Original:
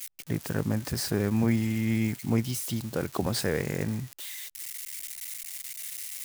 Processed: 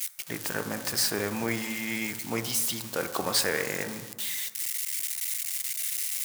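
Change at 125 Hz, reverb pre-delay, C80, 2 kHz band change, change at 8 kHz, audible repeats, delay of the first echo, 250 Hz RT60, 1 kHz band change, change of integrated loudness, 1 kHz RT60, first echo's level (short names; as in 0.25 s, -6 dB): -12.0 dB, 3 ms, 12.0 dB, +6.0 dB, +7.0 dB, none, none, 1.3 s, +4.0 dB, +1.5 dB, 1.2 s, none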